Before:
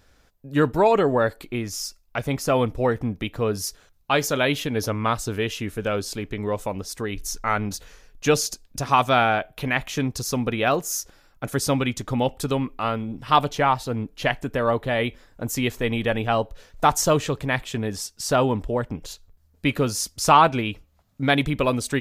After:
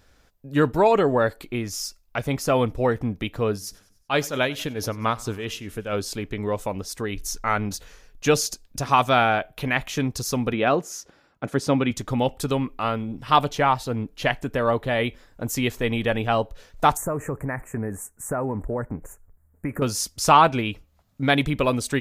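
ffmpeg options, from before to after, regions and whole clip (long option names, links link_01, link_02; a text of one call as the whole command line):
ffmpeg -i in.wav -filter_complex "[0:a]asettb=1/sr,asplit=3[link_01][link_02][link_03];[link_01]atrim=end=3.524[link_04];[link_02]atrim=start=3.52:end=5.93,asetpts=PTS-STARTPTS,afade=type=in:duration=0.004:curve=qsin,afade=type=out:start_time=2.406:duration=0.004:curve=qsin,tremolo=f=4.5:d=0.63,aecho=1:1:95|190|285|380:0.0708|0.0396|0.0222|0.0124,atrim=end_sample=106281[link_05];[link_03]atrim=start=5.926[link_06];[link_04][link_05]acrossfade=duration=0.004:curve1=hsin:curve2=qsin[link_07];[link_07][link_06]acrossfade=duration=0.004:curve1=qsin:curve2=hsin,asettb=1/sr,asplit=3[link_08][link_09][link_10];[link_08]atrim=end=10.534[link_11];[link_09]atrim=start=10.53:end=11.91,asetpts=PTS-STARTPTS,afade=type=in:duration=0.004:curve=qsin,afade=type=out:start_time=1.376:duration=0.004:curve=qsin,highpass=220,aemphasis=mode=reproduction:type=bsi[link_12];[link_10]atrim=start=11.906[link_13];[link_11][link_12]acrossfade=duration=0.004:curve1=hsin:curve2=qsin[link_14];[link_14][link_13]acrossfade=duration=0.004:curve1=qsin:curve2=hsin,asettb=1/sr,asplit=3[link_15][link_16][link_17];[link_15]atrim=end=16.974[link_18];[link_16]atrim=start=16.97:end=19.82,asetpts=PTS-STARTPTS,afade=type=in:duration=0.004:curve=qsin,afade=type=out:start_time=2.846:duration=0.004:curve=qsin,acompressor=threshold=-22dB:ratio=5:attack=3.2:release=140:knee=1:detection=peak,asuperstop=centerf=4000:order=8:qfactor=0.71[link_19];[link_17]atrim=start=19.816[link_20];[link_18][link_19]acrossfade=duration=0.004:curve1=hsin:curve2=qsin[link_21];[link_21][link_20]acrossfade=duration=0.004:curve1=qsin:curve2=hsin" out.wav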